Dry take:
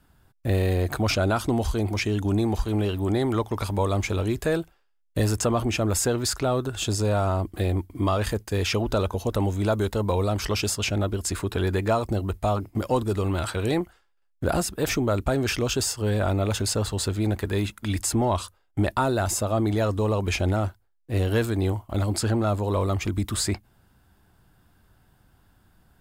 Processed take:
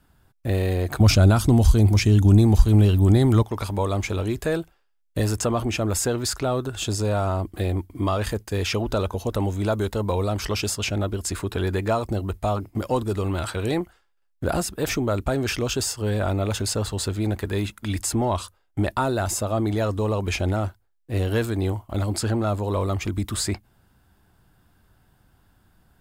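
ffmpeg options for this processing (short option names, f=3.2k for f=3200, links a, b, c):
-filter_complex "[0:a]asettb=1/sr,asplit=3[a][b][c];[a]atrim=end=1.004[d];[b]atrim=start=1:end=3.43,asetpts=PTS-STARTPTS,afade=t=in:d=0.004:c=qsin,afade=t=out:st=2.426:d=0.004:c=qsin,bass=f=250:g=12,treble=f=4k:g=7[e];[c]atrim=start=3.426[f];[d][e]acrossfade=d=0.004:c1=hsin:c2=qsin[g];[g][f]acrossfade=d=0.004:c1=qsin:c2=hsin"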